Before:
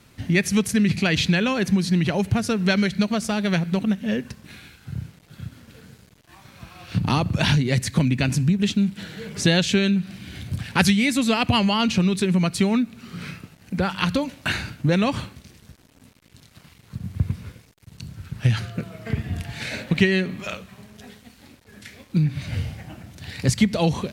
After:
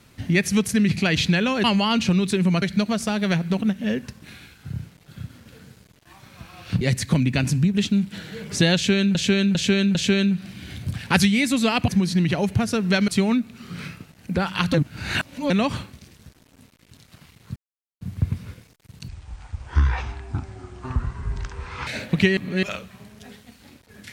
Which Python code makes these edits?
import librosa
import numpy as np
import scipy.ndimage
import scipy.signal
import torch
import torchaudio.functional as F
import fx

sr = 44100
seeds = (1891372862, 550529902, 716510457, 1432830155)

y = fx.edit(x, sr, fx.swap(start_s=1.64, length_s=1.2, other_s=11.53, other_length_s=0.98),
    fx.cut(start_s=7.03, length_s=0.63),
    fx.repeat(start_s=9.6, length_s=0.4, count=4),
    fx.reverse_span(start_s=14.17, length_s=0.76),
    fx.insert_silence(at_s=16.99, length_s=0.45),
    fx.speed_span(start_s=18.06, length_s=1.59, speed=0.57),
    fx.reverse_span(start_s=20.15, length_s=0.26), tone=tone)